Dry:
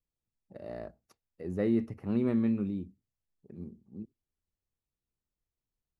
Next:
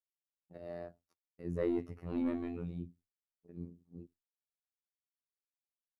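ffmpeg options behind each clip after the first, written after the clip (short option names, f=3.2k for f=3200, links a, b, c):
-af "asoftclip=type=tanh:threshold=-21dB,afftfilt=real='hypot(re,im)*cos(PI*b)':imag='0':win_size=2048:overlap=0.75,agate=range=-33dB:threshold=-59dB:ratio=3:detection=peak"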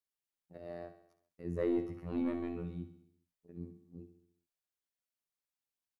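-af "aecho=1:1:67|134|201|268|335|402:0.282|0.155|0.0853|0.0469|0.0258|0.0142"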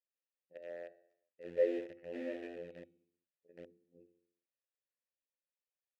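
-filter_complex "[0:a]asplit=2[a][b];[b]acrusher=bits=5:mix=0:aa=0.000001,volume=-6.5dB[c];[a][c]amix=inputs=2:normalize=0,asplit=3[d][e][f];[d]bandpass=f=530:t=q:w=8,volume=0dB[g];[e]bandpass=f=1.84k:t=q:w=8,volume=-6dB[h];[f]bandpass=f=2.48k:t=q:w=8,volume=-9dB[i];[g][h][i]amix=inputs=3:normalize=0,volume=5.5dB"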